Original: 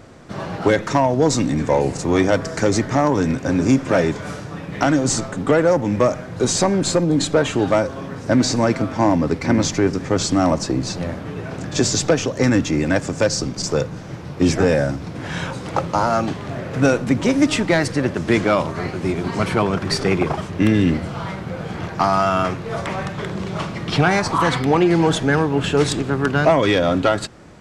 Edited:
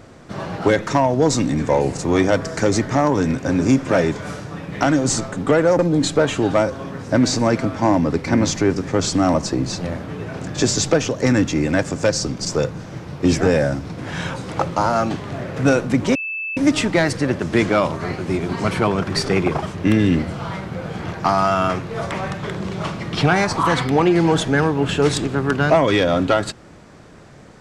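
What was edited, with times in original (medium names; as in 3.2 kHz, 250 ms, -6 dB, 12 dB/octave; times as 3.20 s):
5.79–6.96 s: delete
17.32 s: add tone 2.63 kHz -23.5 dBFS 0.42 s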